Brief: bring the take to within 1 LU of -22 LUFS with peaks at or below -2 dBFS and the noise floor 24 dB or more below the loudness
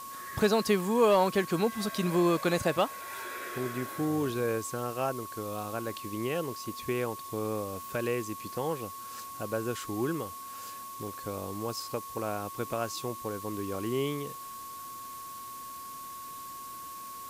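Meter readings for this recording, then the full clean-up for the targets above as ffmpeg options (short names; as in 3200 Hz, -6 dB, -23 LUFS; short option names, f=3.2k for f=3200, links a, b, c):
steady tone 1100 Hz; tone level -41 dBFS; noise floor -43 dBFS; noise floor target -57 dBFS; loudness -32.5 LUFS; peak -13.5 dBFS; loudness target -22.0 LUFS
-> -af "bandreject=f=1.1k:w=30"
-af "afftdn=nr=14:nf=-43"
-af "volume=10.5dB"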